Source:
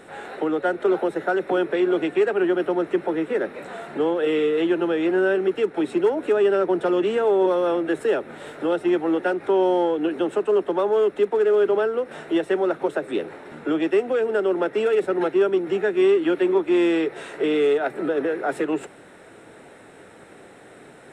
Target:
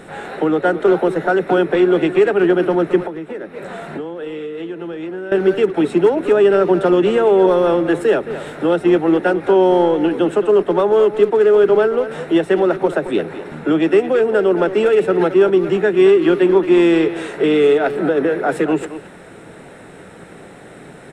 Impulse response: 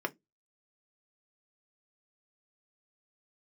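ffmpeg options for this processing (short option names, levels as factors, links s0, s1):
-filter_complex "[0:a]equalizer=f=170:w=2.4:g=7,asplit=2[s0][s1];[s1]adelay=220,highpass=300,lowpass=3400,asoftclip=type=hard:threshold=0.158,volume=0.282[s2];[s0][s2]amix=inputs=2:normalize=0,asettb=1/sr,asplit=3[s3][s4][s5];[s3]atrim=end=3.074[s6];[s4]atrim=start=3.07:end=5.32,asetpts=PTS-STARTPTS,afade=t=in:d=0.004:c=qsin,afade=t=out:st=2.246:d=0.004:c=qsin,acompressor=threshold=0.0282:ratio=10[s7];[s5]atrim=start=5.316[s8];[s6][s7]acrossfade=d=0.004:c1=hsin:c2=qsin[s9];[s9][s8]acrossfade=d=0.004:c1=qsin:c2=hsin,lowshelf=f=70:g=10.5,volume=2"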